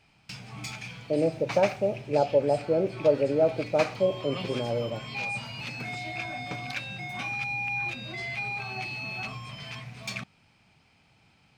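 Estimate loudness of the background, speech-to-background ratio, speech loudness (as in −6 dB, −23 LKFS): −35.0 LKFS, 8.0 dB, −27.0 LKFS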